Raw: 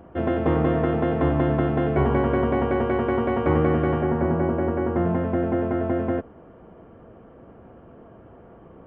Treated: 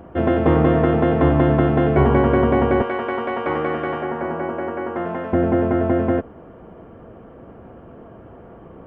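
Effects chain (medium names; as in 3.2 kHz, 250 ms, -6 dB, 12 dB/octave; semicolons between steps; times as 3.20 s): 2.82–5.33 s: high-pass 860 Hz 6 dB/octave; trim +5.5 dB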